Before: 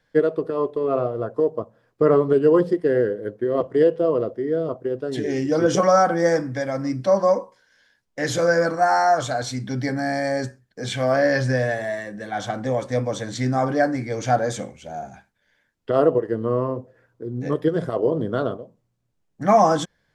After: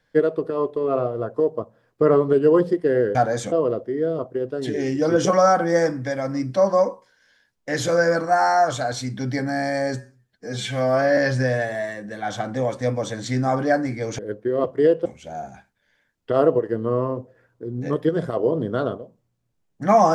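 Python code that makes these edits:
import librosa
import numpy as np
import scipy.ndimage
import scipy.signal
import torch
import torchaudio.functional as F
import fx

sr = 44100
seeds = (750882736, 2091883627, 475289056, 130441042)

y = fx.edit(x, sr, fx.swap(start_s=3.15, length_s=0.87, other_s=14.28, other_length_s=0.37),
    fx.stretch_span(start_s=10.46, length_s=0.81, factor=1.5), tone=tone)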